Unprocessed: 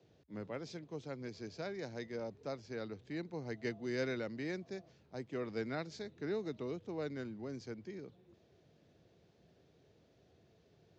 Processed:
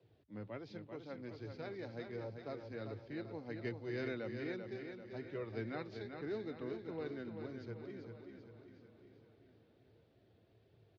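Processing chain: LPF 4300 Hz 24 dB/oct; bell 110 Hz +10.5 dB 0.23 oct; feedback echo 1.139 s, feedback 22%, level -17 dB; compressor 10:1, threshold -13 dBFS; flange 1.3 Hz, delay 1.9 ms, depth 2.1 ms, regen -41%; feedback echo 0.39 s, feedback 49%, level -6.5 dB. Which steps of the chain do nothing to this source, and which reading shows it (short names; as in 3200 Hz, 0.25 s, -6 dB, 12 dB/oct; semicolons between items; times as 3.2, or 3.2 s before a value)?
compressor, threshold -13 dBFS: input peak -25.5 dBFS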